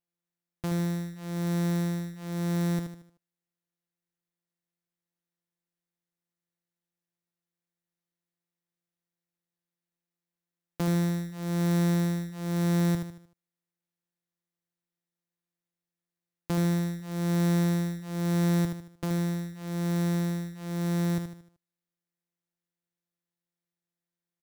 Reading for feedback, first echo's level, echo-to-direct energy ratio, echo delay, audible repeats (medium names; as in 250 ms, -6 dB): 41%, -7.0 dB, -6.0 dB, 76 ms, 4